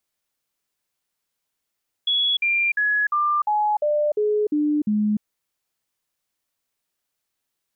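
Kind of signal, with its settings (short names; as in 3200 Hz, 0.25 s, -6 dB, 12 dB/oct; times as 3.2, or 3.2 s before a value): stepped sine 3370 Hz down, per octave 2, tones 9, 0.30 s, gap 0.05 s -17.5 dBFS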